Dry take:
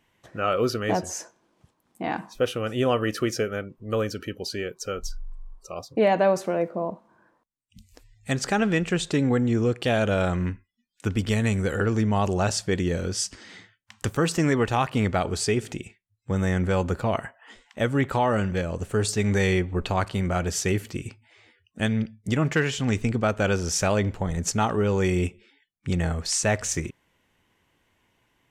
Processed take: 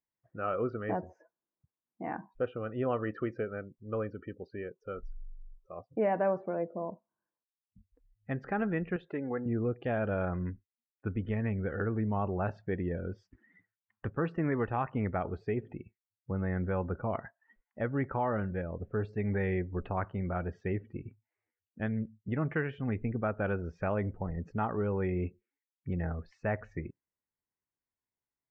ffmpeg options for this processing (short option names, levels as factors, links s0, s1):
-filter_complex "[0:a]asettb=1/sr,asplit=3[s0][s1][s2];[s0]atrim=end=8.964[s3];[s1]atrim=start=8.96:end=9.46,asetpts=PTS-STARTPTS,afade=t=in:d=0.004:c=qsin,afade=t=out:st=0.496:d=0.004:c=qsin,bass=f=250:g=-12,treble=f=4000:g=-3[s4];[s2]atrim=start=9.456[s5];[s3][s4]acrossfade=d=0.004:c1=hsin:c2=qsin[s6];[s6][s5]acrossfade=d=0.004:c1=qsin:c2=hsin,afftdn=nr=22:nf=-38,lowpass=f=2000:w=0.5412,lowpass=f=2000:w=1.3066,volume=0.376"